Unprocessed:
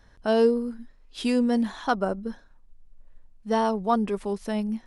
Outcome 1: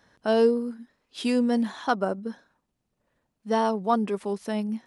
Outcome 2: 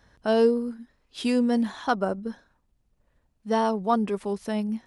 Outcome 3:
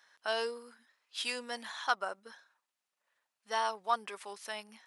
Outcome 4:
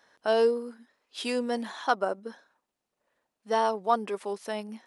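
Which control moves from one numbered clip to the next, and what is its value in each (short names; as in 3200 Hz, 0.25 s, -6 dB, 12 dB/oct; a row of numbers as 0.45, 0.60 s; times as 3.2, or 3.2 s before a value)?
HPF, cutoff: 150, 57, 1200, 430 Hz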